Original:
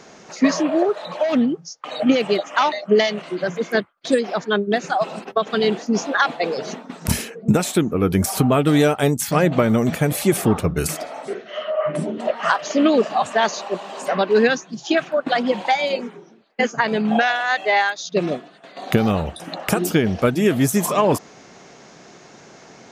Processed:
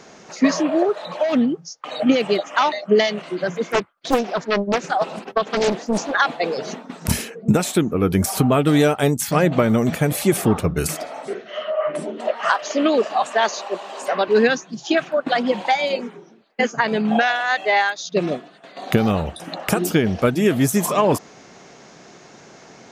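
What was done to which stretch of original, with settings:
0:03.66–0:06.16: highs frequency-modulated by the lows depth 0.85 ms
0:11.73–0:14.28: high-pass filter 310 Hz

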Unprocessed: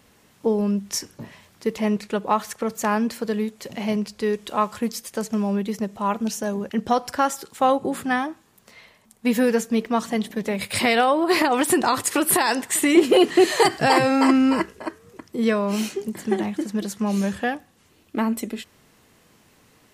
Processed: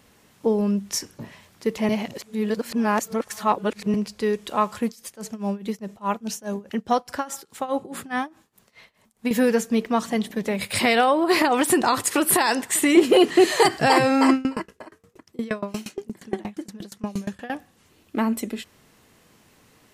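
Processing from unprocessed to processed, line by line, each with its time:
0:01.89–0:03.94: reverse
0:04.86–0:09.31: amplitude tremolo 4.8 Hz, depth 90%
0:14.33–0:17.50: tremolo with a ramp in dB decaying 8.5 Hz, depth 25 dB

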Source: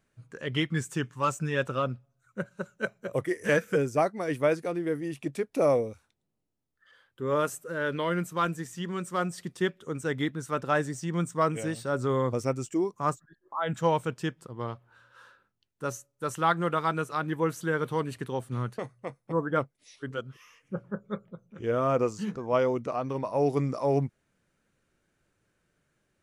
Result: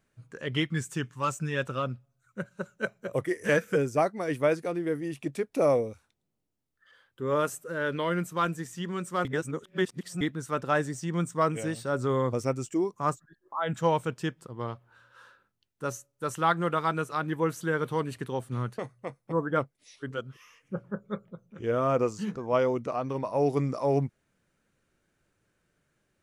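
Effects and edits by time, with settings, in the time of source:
0:00.64–0:02.56: parametric band 580 Hz −3 dB 2.6 octaves
0:09.25–0:10.21: reverse

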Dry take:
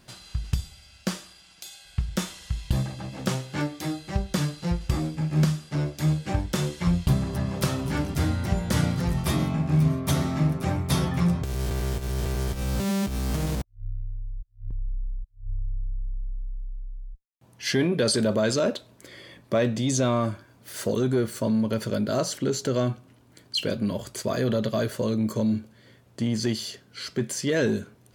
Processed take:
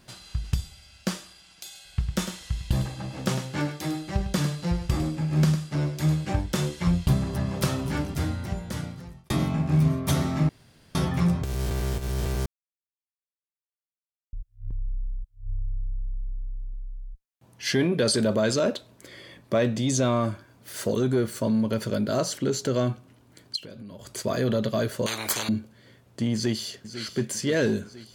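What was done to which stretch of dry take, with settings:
0:01.65–0:06.25: single-tap delay 103 ms −9.5 dB
0:07.78–0:09.30: fade out
0:10.49–0:10.95: fill with room tone
0:12.46–0:14.33: silence
0:16.28–0:16.74: slack as between gear wheels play −46 dBFS
0:23.56–0:24.15: downward compressor 12 to 1, threshold −38 dBFS
0:25.06–0:25.49: every bin compressed towards the loudest bin 10 to 1
0:26.34–0:27.04: delay throw 500 ms, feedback 65%, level −12 dB

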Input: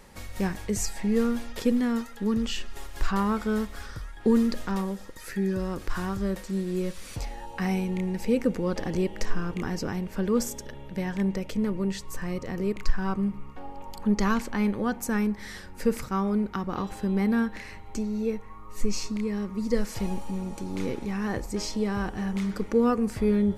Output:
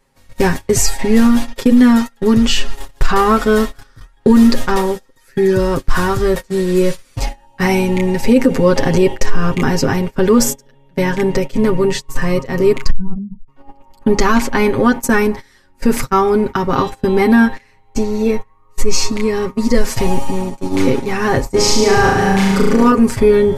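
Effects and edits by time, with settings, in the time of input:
0:12.90–0:13.48: expanding power law on the bin magnitudes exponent 3.6
0:21.53–0:22.92: flutter between parallel walls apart 6.2 metres, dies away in 1 s
whole clip: noise gate −32 dBFS, range −26 dB; comb filter 7.5 ms, depth 85%; boost into a limiter +15.5 dB; level −1 dB

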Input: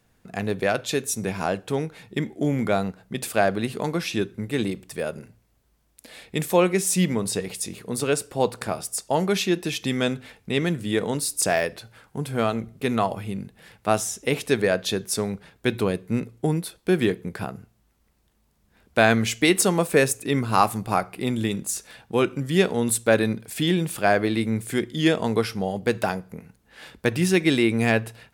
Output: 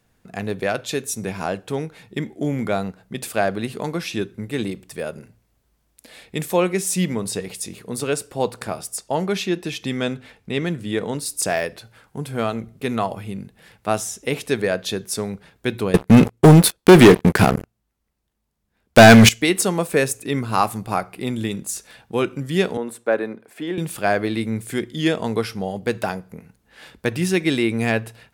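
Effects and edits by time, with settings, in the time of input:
0:08.97–0:11.26: high-shelf EQ 7,000 Hz −6.5 dB
0:15.94–0:19.29: leveller curve on the samples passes 5
0:22.77–0:23.78: three-way crossover with the lows and the highs turned down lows −22 dB, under 260 Hz, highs −16 dB, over 2,000 Hz

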